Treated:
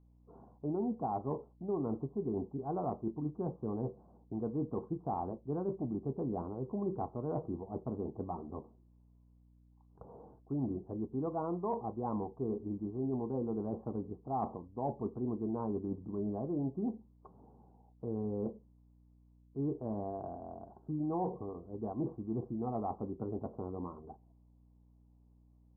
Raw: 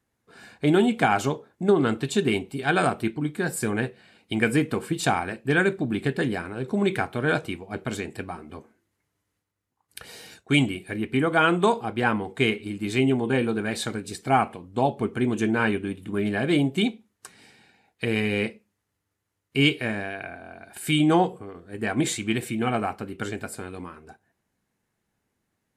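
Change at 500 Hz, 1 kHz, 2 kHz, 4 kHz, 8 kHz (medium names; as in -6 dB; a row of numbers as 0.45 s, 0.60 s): -12.0 dB, -13.0 dB, under -40 dB, under -40 dB, under -40 dB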